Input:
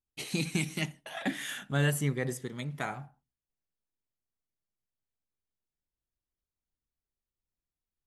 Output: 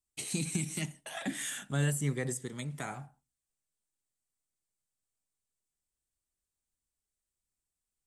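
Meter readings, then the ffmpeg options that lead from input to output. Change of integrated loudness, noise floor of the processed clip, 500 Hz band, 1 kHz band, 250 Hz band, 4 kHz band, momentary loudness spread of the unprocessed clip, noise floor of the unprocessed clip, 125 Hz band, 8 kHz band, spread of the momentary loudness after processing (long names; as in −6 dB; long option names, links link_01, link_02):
−2.0 dB, below −85 dBFS, −4.0 dB, −4.5 dB, −2.5 dB, −4.0 dB, 9 LU, below −85 dBFS, −1.5 dB, +4.0 dB, 10 LU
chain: -filter_complex "[0:a]equalizer=frequency=8200:width=1.6:gain=14.5,acrossover=split=310[link_01][link_02];[link_02]alimiter=level_in=1.5dB:limit=-24dB:level=0:latency=1:release=131,volume=-1.5dB[link_03];[link_01][link_03]amix=inputs=2:normalize=0,volume=-1.5dB"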